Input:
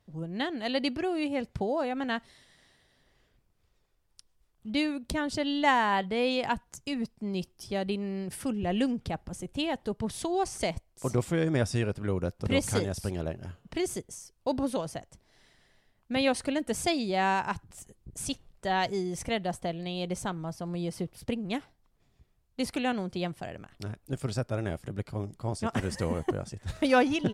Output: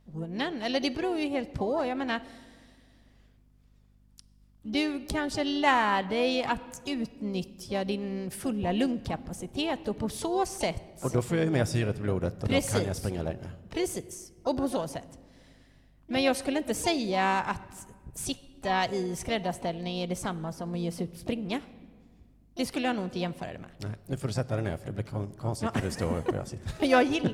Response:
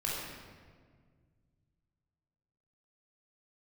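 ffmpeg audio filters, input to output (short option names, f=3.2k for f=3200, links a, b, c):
-filter_complex "[0:a]asplit=2[a][b];[1:a]atrim=start_sample=2205[c];[b][c]afir=irnorm=-1:irlink=0,volume=-21dB[d];[a][d]amix=inputs=2:normalize=0,aeval=exprs='val(0)+0.001*(sin(2*PI*50*n/s)+sin(2*PI*2*50*n/s)/2+sin(2*PI*3*50*n/s)/3+sin(2*PI*4*50*n/s)/4+sin(2*PI*5*50*n/s)/5)':c=same,asplit=2[e][f];[f]asetrate=58866,aresample=44100,atempo=0.749154,volume=-12dB[g];[e][g]amix=inputs=2:normalize=0"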